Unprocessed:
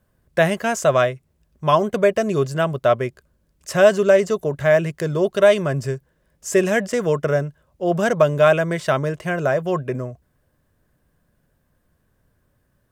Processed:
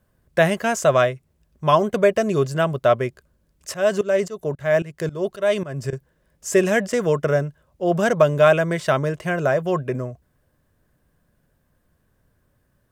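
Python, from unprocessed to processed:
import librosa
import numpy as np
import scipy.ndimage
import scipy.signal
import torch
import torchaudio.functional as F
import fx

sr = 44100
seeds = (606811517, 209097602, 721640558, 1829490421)

y = fx.tremolo_shape(x, sr, shape='saw_up', hz=3.7, depth_pct=90, at=(3.74, 5.93))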